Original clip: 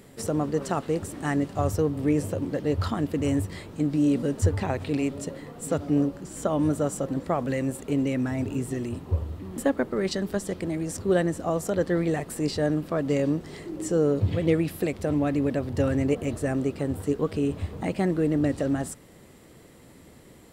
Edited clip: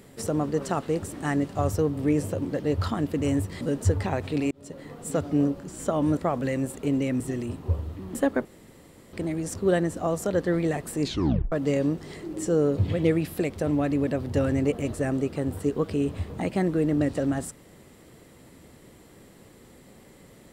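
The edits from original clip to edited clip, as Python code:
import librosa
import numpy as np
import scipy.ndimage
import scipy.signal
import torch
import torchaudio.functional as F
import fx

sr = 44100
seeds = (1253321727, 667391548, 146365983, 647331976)

y = fx.edit(x, sr, fx.cut(start_s=3.61, length_s=0.57),
    fx.fade_in_span(start_s=5.08, length_s=0.42),
    fx.cut(start_s=6.74, length_s=0.48),
    fx.cut(start_s=8.25, length_s=0.38),
    fx.room_tone_fill(start_s=9.88, length_s=0.68),
    fx.tape_stop(start_s=12.45, length_s=0.5), tone=tone)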